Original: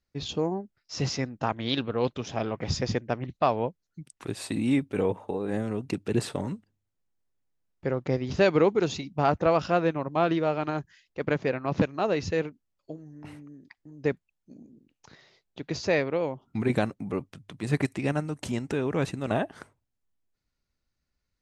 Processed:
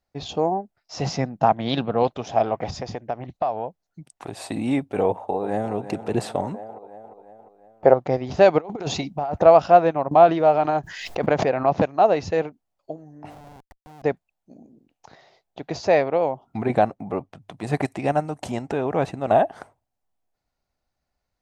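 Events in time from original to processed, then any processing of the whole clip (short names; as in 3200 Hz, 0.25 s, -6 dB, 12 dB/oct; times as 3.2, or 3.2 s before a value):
1.06–2.03 bell 170 Hz +11 dB
2.7–4.33 compressor, threshold -30 dBFS
5.07–5.73 echo throw 0.35 s, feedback 55%, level -12 dB
6.54–7.94 bell 680 Hz +12.5 dB 2.1 oct
8.58–9.43 negative-ratio compressor -29 dBFS, ratio -0.5
10.11–11.77 backwards sustainer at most 44 dB/s
13.3–14.03 Schmitt trigger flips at -47 dBFS
16.57–17.42 LPF 3600 Hz 6 dB/oct
18.61–19.29 high shelf 7600 Hz -> 4300 Hz -7 dB
whole clip: bell 730 Hz +15 dB 0.84 oct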